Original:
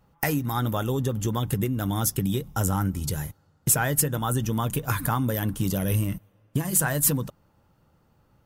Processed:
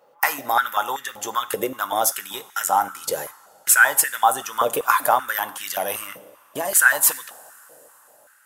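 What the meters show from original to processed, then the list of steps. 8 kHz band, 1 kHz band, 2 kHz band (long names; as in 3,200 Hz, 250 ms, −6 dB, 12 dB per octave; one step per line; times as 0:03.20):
+5.5 dB, +11.5 dB, +14.0 dB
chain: coupled-rooms reverb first 0.56 s, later 4.6 s, from −19 dB, DRR 13 dB
high-pass on a step sequencer 5.2 Hz 530–1,800 Hz
level +5 dB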